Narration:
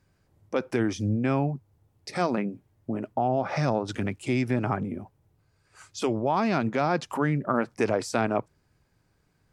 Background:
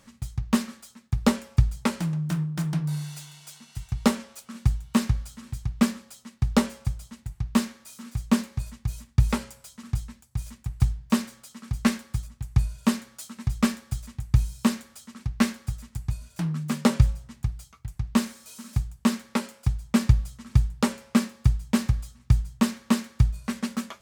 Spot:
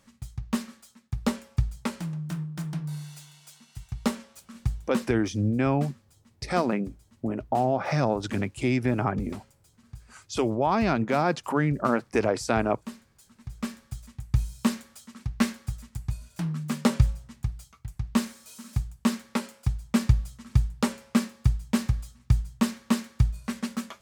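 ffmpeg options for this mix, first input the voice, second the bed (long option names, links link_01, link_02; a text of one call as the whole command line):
ffmpeg -i stem1.wav -i stem2.wav -filter_complex "[0:a]adelay=4350,volume=1dB[link_01];[1:a]volume=9dB,afade=type=out:start_time=4.91:duration=0.21:silence=0.281838,afade=type=in:start_time=13.31:duration=1.37:silence=0.188365[link_02];[link_01][link_02]amix=inputs=2:normalize=0" out.wav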